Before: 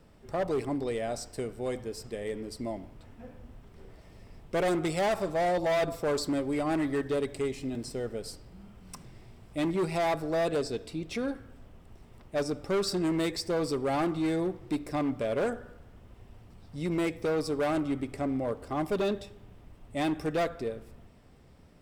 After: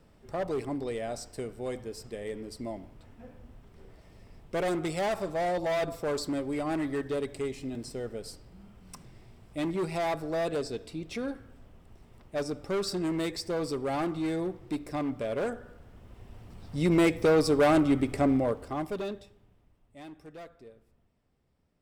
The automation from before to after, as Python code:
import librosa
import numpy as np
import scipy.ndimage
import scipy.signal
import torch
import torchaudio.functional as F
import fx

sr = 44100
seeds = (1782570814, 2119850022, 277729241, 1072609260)

y = fx.gain(x, sr, db=fx.line((15.56, -2.0), (16.81, 6.5), (18.31, 6.5), (18.92, -4.5), (19.97, -17.0)))